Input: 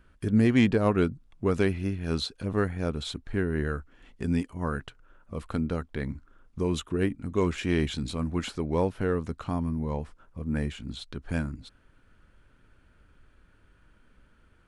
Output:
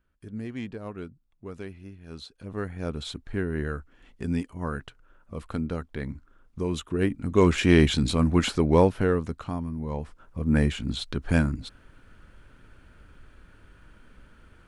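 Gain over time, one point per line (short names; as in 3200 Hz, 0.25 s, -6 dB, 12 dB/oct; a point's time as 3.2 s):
2.06 s -14 dB
2.94 s -1 dB
6.8 s -1 dB
7.55 s +8 dB
8.74 s +8 dB
9.7 s -3.5 dB
10.54 s +7.5 dB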